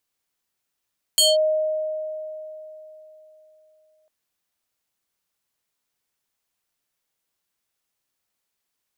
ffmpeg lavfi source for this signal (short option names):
-f lavfi -i "aevalsrc='0.237*pow(10,-3*t/3.59)*sin(2*PI*622*t+2.6*clip(1-t/0.19,0,1)*sin(2*PI*6.06*622*t))':d=2.9:s=44100"